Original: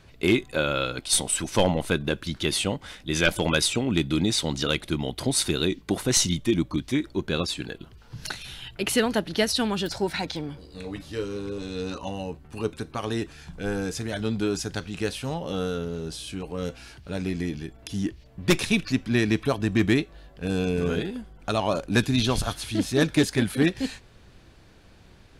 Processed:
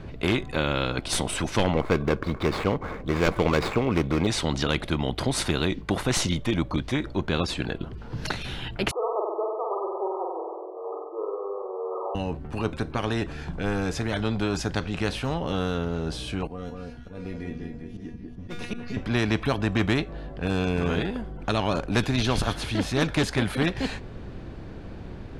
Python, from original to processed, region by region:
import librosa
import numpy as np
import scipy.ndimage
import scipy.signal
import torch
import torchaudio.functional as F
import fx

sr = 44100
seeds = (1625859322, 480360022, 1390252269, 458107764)

y = fx.chain(x, sr, fx.median_filter(points=15),
    fx.small_body(hz=(450.0, 1100.0, 2200.0), ring_ms=25, db=12), at=(1.73, 4.27))
y = fx.chain(y, sr, fx.brickwall_bandpass(low_hz=350.0, high_hz=1300.0),
    fx.room_flutter(wall_m=8.2, rt60_s=0.84), at=(8.91, 12.15))
y = fx.chain(y, sr, fx.comb_fb(f0_hz=240.0, decay_s=0.3, harmonics='all', damping=0.0, mix_pct=90),
    fx.auto_swell(attack_ms=168.0),
    fx.echo_alternate(ms=193, hz=1900.0, feedback_pct=55, wet_db=-4.5), at=(16.47, 18.97))
y = fx.lowpass(y, sr, hz=1300.0, slope=6)
y = fx.low_shelf(y, sr, hz=320.0, db=11.5)
y = fx.spectral_comp(y, sr, ratio=2.0)
y = y * librosa.db_to_amplitude(-6.0)